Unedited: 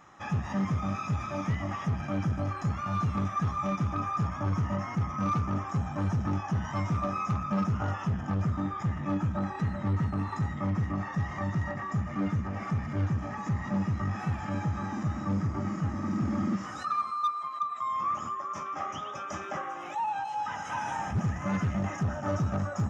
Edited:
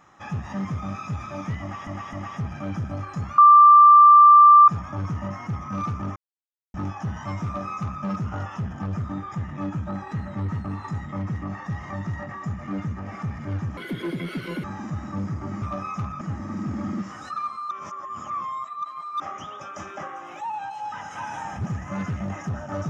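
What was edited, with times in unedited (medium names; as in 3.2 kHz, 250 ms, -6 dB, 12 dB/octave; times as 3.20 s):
1.61–1.87 s: loop, 3 plays
2.86–4.16 s: bleep 1.18 kHz -7.5 dBFS
5.64–6.22 s: mute
6.93–7.52 s: copy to 15.75 s
13.25–14.77 s: speed 175%
17.25–18.74 s: reverse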